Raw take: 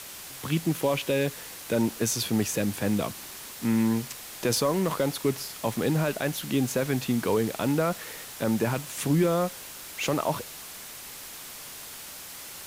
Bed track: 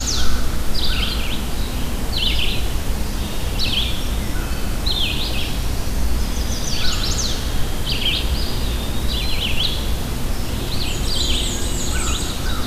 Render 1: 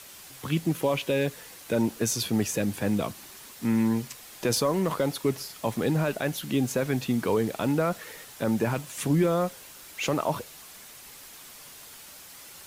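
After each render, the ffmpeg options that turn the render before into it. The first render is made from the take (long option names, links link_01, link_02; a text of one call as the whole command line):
ffmpeg -i in.wav -af "afftdn=noise_reduction=6:noise_floor=-42" out.wav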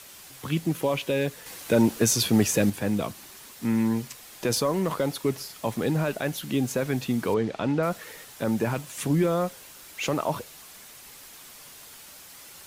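ffmpeg -i in.wav -filter_complex "[0:a]asettb=1/sr,asplit=3[link_01][link_02][link_03];[link_01]atrim=end=1.464[link_04];[link_02]atrim=start=1.46:end=2.7,asetpts=PTS-STARTPTS,afade=type=in:duration=0.004:curve=qsin,afade=type=out:start_time=1.236:duration=0.004:curve=qsin,acontrast=30[link_05];[link_03]atrim=start=2.696[link_06];[link_04][link_05]acrossfade=duration=0.004:curve1=hsin:curve2=qsin[link_07];[link_07][link_06]acrossfade=duration=0.004:curve1=qsin:curve2=hsin,asettb=1/sr,asplit=3[link_08][link_09][link_10];[link_08]atrim=end=7.344[link_11];[link_09]atrim=start=7.34:end=7.83,asetpts=PTS-STARTPTS,afade=type=in:duration=0.004:curve=qsin,afade=type=out:start_time=0.486:duration=0.004:curve=qsin,lowpass=4600[link_12];[link_10]atrim=start=7.826[link_13];[link_11][link_12]acrossfade=duration=0.004:curve1=hsin:curve2=qsin[link_14];[link_14][link_13]acrossfade=duration=0.004:curve1=qsin:curve2=hsin" out.wav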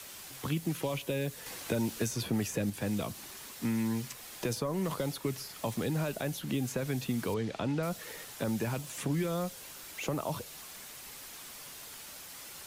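ffmpeg -i in.wav -filter_complex "[0:a]acrossover=split=160|1100|2700|7600[link_01][link_02][link_03][link_04][link_05];[link_01]acompressor=threshold=-36dB:ratio=4[link_06];[link_02]acompressor=threshold=-34dB:ratio=4[link_07];[link_03]acompressor=threshold=-48dB:ratio=4[link_08];[link_04]acompressor=threshold=-46dB:ratio=4[link_09];[link_05]acompressor=threshold=-46dB:ratio=4[link_10];[link_06][link_07][link_08][link_09][link_10]amix=inputs=5:normalize=0" out.wav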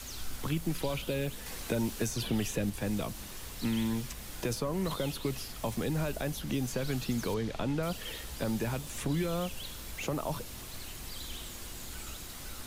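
ffmpeg -i in.wav -i bed.wav -filter_complex "[1:a]volume=-24dB[link_01];[0:a][link_01]amix=inputs=2:normalize=0" out.wav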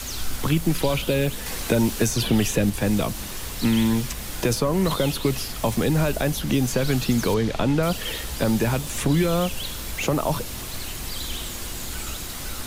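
ffmpeg -i in.wav -af "volume=11dB" out.wav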